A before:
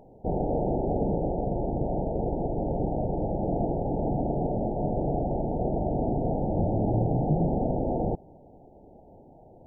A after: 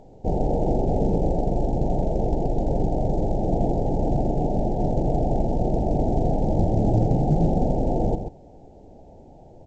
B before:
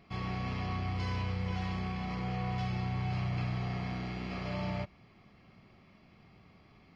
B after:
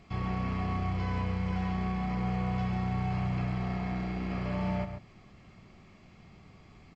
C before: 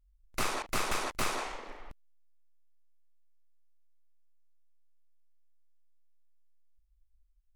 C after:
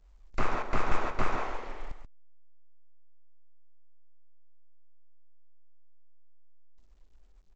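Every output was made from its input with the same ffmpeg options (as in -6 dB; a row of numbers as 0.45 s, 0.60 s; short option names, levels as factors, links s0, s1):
-filter_complex "[0:a]lowshelf=f=68:g=8.5,acrossover=split=2200[s0][s1];[s1]acompressor=threshold=0.00126:ratio=5[s2];[s0][s2]amix=inputs=2:normalize=0,asplit=2[s3][s4];[s4]adelay=134.1,volume=0.398,highshelf=f=4000:g=-3.02[s5];[s3][s5]amix=inputs=2:normalize=0,volume=1.33" -ar 16000 -c:a pcm_alaw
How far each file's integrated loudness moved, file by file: +4.5 LU, +3.5 LU, 0.0 LU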